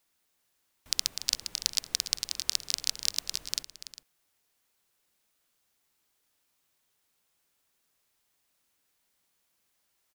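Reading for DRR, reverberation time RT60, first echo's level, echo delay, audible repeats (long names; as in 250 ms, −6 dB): no reverb audible, no reverb audible, −12.5 dB, 289 ms, 2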